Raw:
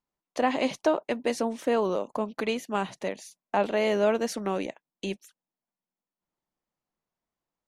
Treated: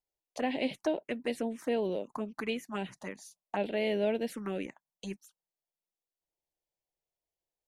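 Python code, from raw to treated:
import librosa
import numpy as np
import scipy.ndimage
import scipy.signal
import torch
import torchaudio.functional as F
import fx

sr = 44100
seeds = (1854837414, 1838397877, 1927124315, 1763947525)

y = fx.env_phaser(x, sr, low_hz=220.0, high_hz=1200.0, full_db=-23.0)
y = y * 10.0 ** (-3.5 / 20.0)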